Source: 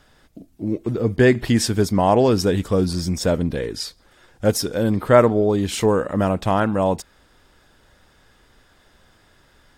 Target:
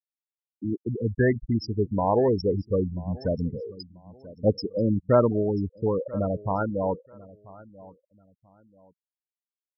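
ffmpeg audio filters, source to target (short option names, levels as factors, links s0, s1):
-af "afftfilt=real='re*gte(hypot(re,im),0.282)':imag='im*gte(hypot(re,im),0.282)':win_size=1024:overlap=0.75,aecho=1:1:987|1974:0.0891|0.0214,aphaser=in_gain=1:out_gain=1:delay=2.2:decay=0.27:speed=0.22:type=sinusoidal,volume=0.501"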